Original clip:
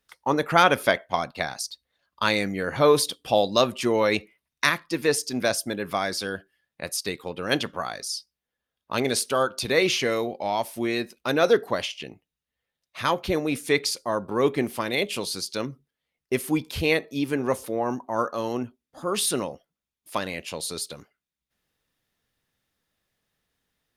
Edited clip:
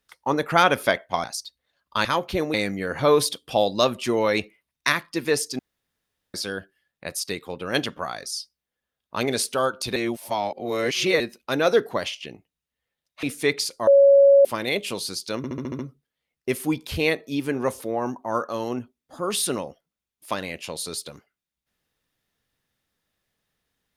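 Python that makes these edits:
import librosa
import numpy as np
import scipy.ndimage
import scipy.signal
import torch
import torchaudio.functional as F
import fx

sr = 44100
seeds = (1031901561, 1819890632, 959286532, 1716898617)

y = fx.edit(x, sr, fx.cut(start_s=1.24, length_s=0.26),
    fx.room_tone_fill(start_s=5.36, length_s=0.75),
    fx.reverse_span(start_s=9.73, length_s=1.24),
    fx.move(start_s=13.0, length_s=0.49, to_s=2.31),
    fx.bleep(start_s=14.13, length_s=0.58, hz=557.0, db=-10.0),
    fx.stutter(start_s=15.63, slice_s=0.07, count=7), tone=tone)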